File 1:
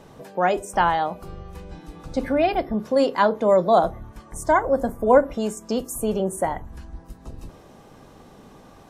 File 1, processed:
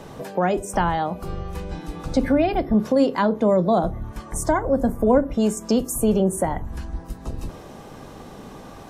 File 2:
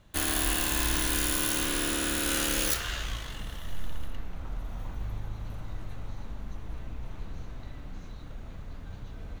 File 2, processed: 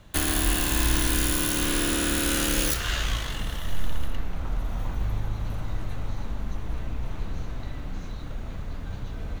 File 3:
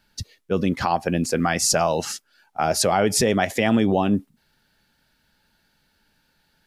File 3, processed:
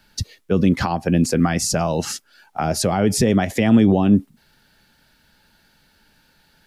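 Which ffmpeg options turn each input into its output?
-filter_complex "[0:a]acrossover=split=310[s0][s1];[s1]acompressor=threshold=0.0224:ratio=2.5[s2];[s0][s2]amix=inputs=2:normalize=0,volume=2.37"

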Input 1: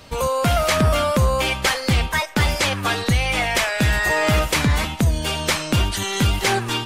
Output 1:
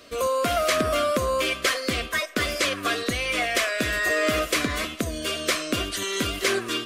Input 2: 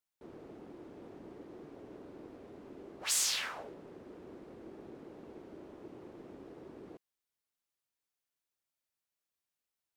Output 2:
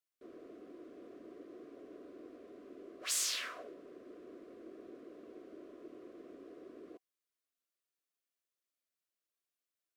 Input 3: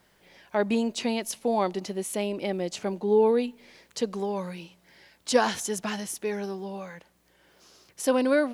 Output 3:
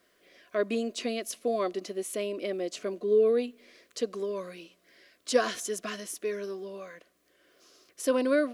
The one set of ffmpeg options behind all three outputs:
-af "asuperstop=centerf=860:order=12:qfactor=3.8,lowshelf=f=210:t=q:w=1.5:g=-11,volume=0.668"

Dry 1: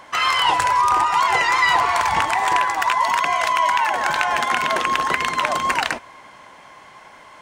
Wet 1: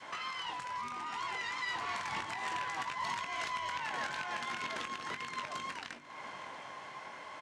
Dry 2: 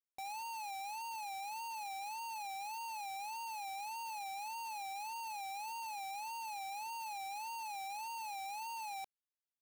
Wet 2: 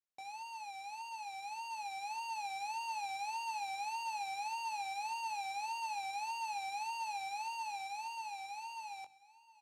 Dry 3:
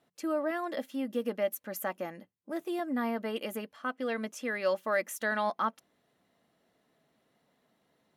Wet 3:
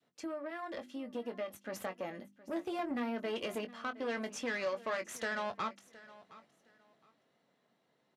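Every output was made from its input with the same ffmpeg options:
-filter_complex "[0:a]bandreject=f=50:t=h:w=6,bandreject=f=100:t=h:w=6,bandreject=f=150:t=h:w=6,bandreject=f=200:t=h:w=6,bandreject=f=250:t=h:w=6,bandreject=f=300:t=h:w=6,bandreject=f=350:t=h:w=6,adynamicequalizer=threshold=0.0224:dfrequency=710:dqfactor=0.93:tfrequency=710:tqfactor=0.93:attack=5:release=100:ratio=0.375:range=4:mode=cutabove:tftype=bell,acompressor=threshold=0.0141:ratio=3,alimiter=level_in=1.5:limit=0.0631:level=0:latency=1:release=288,volume=0.668,dynaudnorm=f=120:g=31:m=2.11,aeval=exprs='(tanh(35.5*val(0)+0.6)-tanh(0.6))/35.5':c=same,highpass=110,lowpass=7200,asplit=2[s0][s1];[s1]adelay=21,volume=0.355[s2];[s0][s2]amix=inputs=2:normalize=0,aecho=1:1:716|1432:0.112|0.0247"

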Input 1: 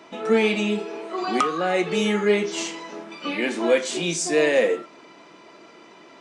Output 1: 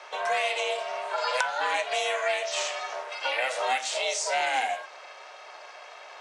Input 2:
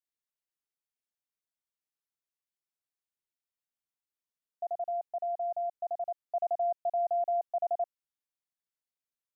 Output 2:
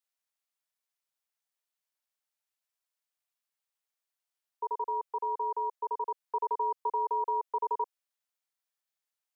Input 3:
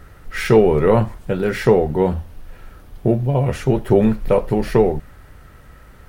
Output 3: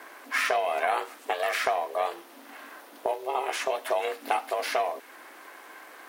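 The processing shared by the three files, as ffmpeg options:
-filter_complex "[0:a]aeval=exprs='val(0)*sin(2*PI*260*n/s)':c=same,highpass=f=550:w=0.5412,highpass=f=550:w=1.3066,acrossover=split=1700|6700[s0][s1][s2];[s0]acompressor=threshold=0.0178:ratio=4[s3];[s1]acompressor=threshold=0.0141:ratio=4[s4];[s2]acompressor=threshold=0.00355:ratio=4[s5];[s3][s4][s5]amix=inputs=3:normalize=0,volume=2.24"

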